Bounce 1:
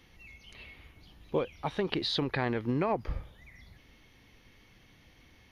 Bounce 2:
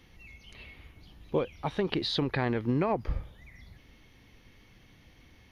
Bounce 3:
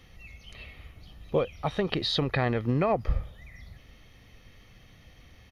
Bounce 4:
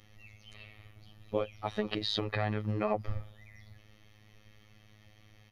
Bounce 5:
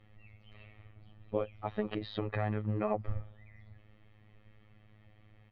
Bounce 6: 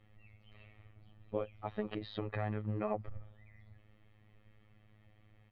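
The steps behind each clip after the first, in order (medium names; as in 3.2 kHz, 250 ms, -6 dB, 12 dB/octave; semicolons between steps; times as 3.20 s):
bass shelf 360 Hz +3.5 dB
comb 1.6 ms, depth 38%; trim +2.5 dB
robot voice 106 Hz; trim -3 dB
distance through air 480 m
transformer saturation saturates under 80 Hz; trim -3.5 dB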